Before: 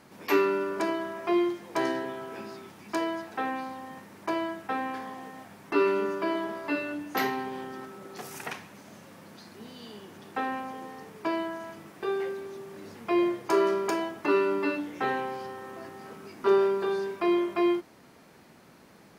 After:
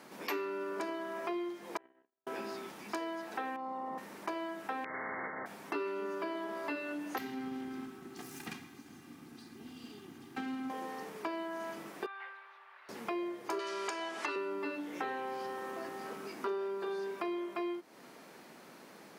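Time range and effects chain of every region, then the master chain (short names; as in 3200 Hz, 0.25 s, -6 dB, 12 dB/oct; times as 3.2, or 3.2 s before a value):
1.77–2.27 steep low-pass 3000 Hz + compressor 3:1, threshold -34 dBFS + gate -33 dBFS, range -60 dB
3.56–3.98 polynomial smoothing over 65 samples + tilt +2 dB/oct + fast leveller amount 70%
4.84–5.46 brick-wall FIR low-pass 2200 Hz + gate with hold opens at -33 dBFS, closes at -39 dBFS + spectral compressor 10:1
7.18–10.7 minimum comb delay 2.5 ms + resonant low shelf 330 Hz +13.5 dB, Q 3 + resonator 120 Hz, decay 1.9 s
12.06–12.89 HPF 1000 Hz 24 dB/oct + air absorption 470 m
13.59–14.36 Bessel low-pass 6000 Hz, order 4 + tilt +4 dB/oct + three-band squash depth 100%
whole clip: HPF 240 Hz 12 dB/oct; compressor 5:1, threshold -38 dBFS; gain +2 dB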